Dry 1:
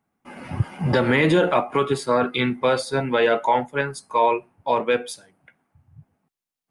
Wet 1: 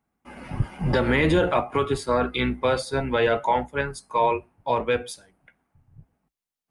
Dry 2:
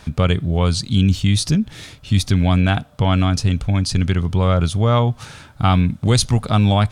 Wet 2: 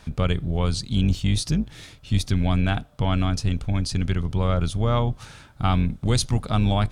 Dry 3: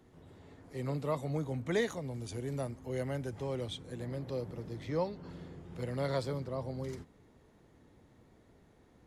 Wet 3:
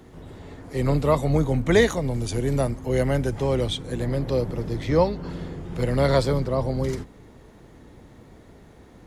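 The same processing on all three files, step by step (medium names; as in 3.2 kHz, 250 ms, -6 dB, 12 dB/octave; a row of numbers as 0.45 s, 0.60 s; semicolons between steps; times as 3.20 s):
octave divider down 2 oct, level -6 dB; normalise loudness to -24 LUFS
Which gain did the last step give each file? -2.5 dB, -6.5 dB, +13.5 dB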